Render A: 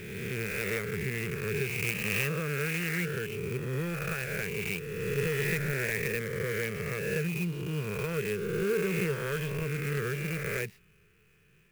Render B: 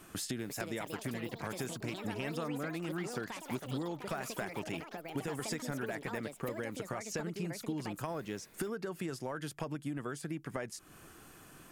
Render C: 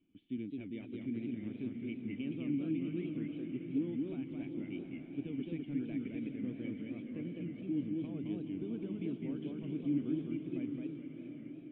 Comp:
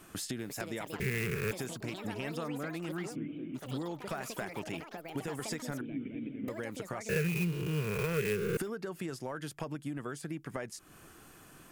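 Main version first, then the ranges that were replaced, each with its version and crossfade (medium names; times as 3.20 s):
B
1.00–1.51 s: from A
3.13–3.57 s: from C, crossfade 0.06 s
5.81–6.48 s: from C
7.09–8.57 s: from A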